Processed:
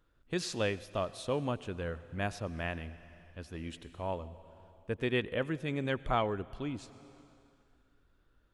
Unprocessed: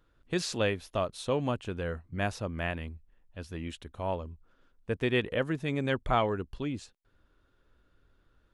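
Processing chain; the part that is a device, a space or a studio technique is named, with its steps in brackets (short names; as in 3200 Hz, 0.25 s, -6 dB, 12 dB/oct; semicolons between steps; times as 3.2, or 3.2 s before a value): compressed reverb return (on a send at -11 dB: reverb RT60 2.2 s, pre-delay 87 ms + compressor 6:1, threshold -35 dBFS, peak gain reduction 11.5 dB); on the sum: gain -3.5 dB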